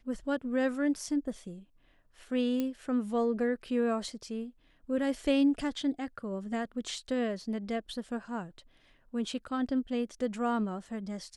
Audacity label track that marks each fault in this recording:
2.600000	2.600000	pop -19 dBFS

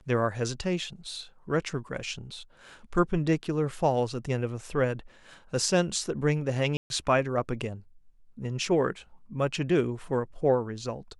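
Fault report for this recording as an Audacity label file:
6.770000	6.900000	gap 0.131 s

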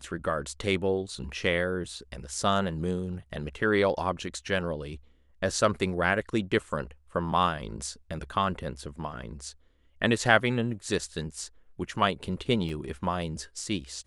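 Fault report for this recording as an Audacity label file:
12.690000	12.690000	gap 3.3 ms

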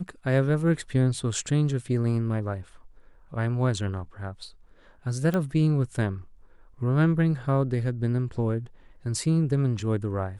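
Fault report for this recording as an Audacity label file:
5.340000	5.340000	pop -15 dBFS

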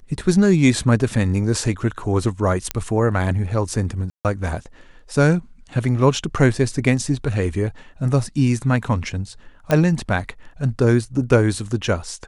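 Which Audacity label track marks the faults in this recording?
2.710000	2.710000	pop -5 dBFS
4.100000	4.250000	gap 0.148 s
9.710000	9.710000	pop -6 dBFS

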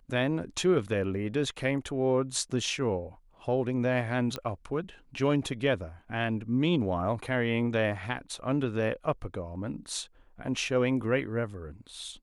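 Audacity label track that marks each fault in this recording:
4.360000	4.360000	pop -19 dBFS

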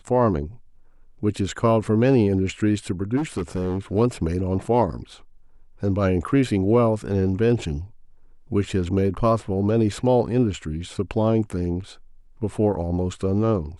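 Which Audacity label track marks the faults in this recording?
3.160000	3.790000	clipped -21 dBFS

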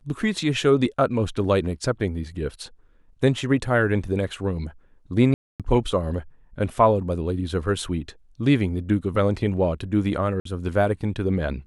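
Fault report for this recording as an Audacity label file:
5.340000	5.600000	gap 0.257 s
10.400000	10.450000	gap 53 ms

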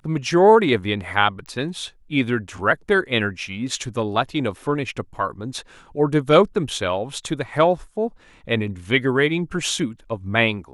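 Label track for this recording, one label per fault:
1.460000	1.460000	pop -23 dBFS

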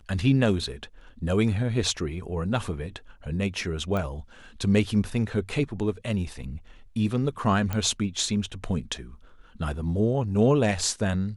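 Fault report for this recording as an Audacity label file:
3.970000	3.970000	pop -18 dBFS
7.730000	7.730000	pop -15 dBFS

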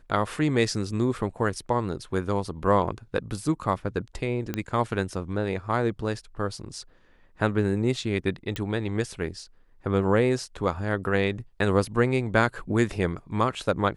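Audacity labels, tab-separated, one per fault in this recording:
4.540000	4.540000	pop -14 dBFS
8.560000	8.560000	pop -16 dBFS

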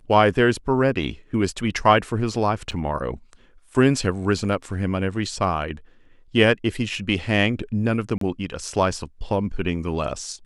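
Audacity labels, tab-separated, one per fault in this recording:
2.710000	2.720000	gap 6.9 ms
8.180000	8.210000	gap 33 ms

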